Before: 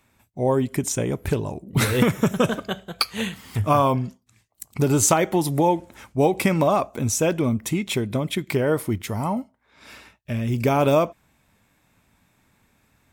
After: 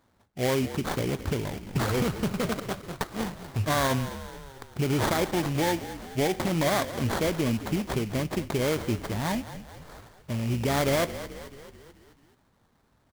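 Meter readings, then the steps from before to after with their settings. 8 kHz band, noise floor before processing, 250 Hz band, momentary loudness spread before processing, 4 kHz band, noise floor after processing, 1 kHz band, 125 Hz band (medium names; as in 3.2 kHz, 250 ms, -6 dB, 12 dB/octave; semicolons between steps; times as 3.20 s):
-10.0 dB, -65 dBFS, -5.5 dB, 9 LU, -3.0 dB, -67 dBFS, -6.5 dB, -5.0 dB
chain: sample-rate reducer 2.7 kHz, jitter 20%; peak limiter -13.5 dBFS, peak gain reduction 8.5 dB; frequency-shifting echo 217 ms, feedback 57%, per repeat -45 Hz, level -13 dB; trim -4 dB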